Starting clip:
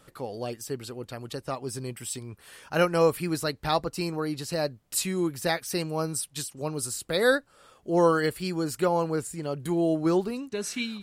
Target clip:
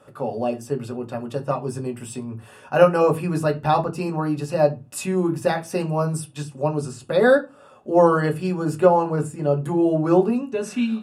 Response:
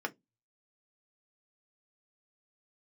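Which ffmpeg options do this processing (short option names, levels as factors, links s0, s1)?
-filter_complex "[1:a]atrim=start_sample=2205,asetrate=22050,aresample=44100[s0];[0:a][s0]afir=irnorm=-1:irlink=0,asettb=1/sr,asplit=3[s1][s2][s3];[s1]atrim=end=6.294[s4];[s2]atrim=start=6.29:end=7.3,asetpts=PTS-STARTPTS,afade=t=in:d=0.004:c=qsin,afade=t=out:st=1.006:d=0.004:c=qsin,acrossover=split=7400[s5][s6];[s6]acompressor=threshold=0.00251:ratio=4:attack=1:release=60[s7];[s5][s7]amix=inputs=2:normalize=0[s8];[s3]atrim=start=7.296[s9];[s4][s8]acrossfade=d=0.004:c1=hsin:c2=qsin[s10];[s10][s9]acrossfade=d=0.004:c1=qsin:c2=hsin,volume=0.841"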